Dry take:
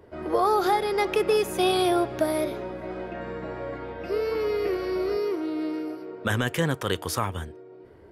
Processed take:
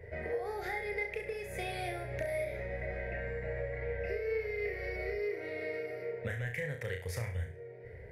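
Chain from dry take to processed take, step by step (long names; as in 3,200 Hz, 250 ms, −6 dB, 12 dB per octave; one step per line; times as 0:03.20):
drawn EQ curve 120 Hz 0 dB, 320 Hz −23 dB, 470 Hz −2 dB, 730 Hz −11 dB, 1,200 Hz −25 dB, 2,000 Hz +8 dB, 3,000 Hz −15 dB, 6,400 Hz −13 dB
downward compressor 10 to 1, threshold −42 dBFS, peak gain reduction 19 dB
flutter between parallel walls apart 5.8 metres, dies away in 0.39 s
level +6.5 dB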